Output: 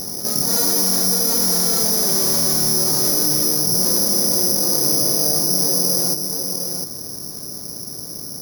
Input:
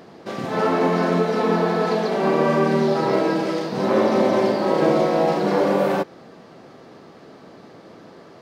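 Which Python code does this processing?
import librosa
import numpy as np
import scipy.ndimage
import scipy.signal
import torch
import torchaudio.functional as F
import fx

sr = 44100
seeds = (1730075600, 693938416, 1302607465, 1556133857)

p1 = fx.doppler_pass(x, sr, speed_mps=26, closest_m=21.0, pass_at_s=2.12)
p2 = fx.dynamic_eq(p1, sr, hz=2300.0, q=1.8, threshold_db=-45.0, ratio=4.0, max_db=5)
p3 = fx.vibrato(p2, sr, rate_hz=3.7, depth_cents=13.0)
p4 = fx.riaa(p3, sr, side='playback')
p5 = p4 + fx.echo_single(p4, sr, ms=705, db=-13.5, dry=0)
p6 = 10.0 ** (-20.0 / 20.0) * np.tanh(p5 / 10.0 ** (-20.0 / 20.0))
p7 = fx.rider(p6, sr, range_db=3, speed_s=0.5)
p8 = (np.kron(scipy.signal.resample_poly(p7, 1, 8), np.eye(8)[0]) * 8)[:len(p7)]
p9 = fx.env_flatten(p8, sr, amount_pct=50)
y = p9 * 10.0 ** (-3.0 / 20.0)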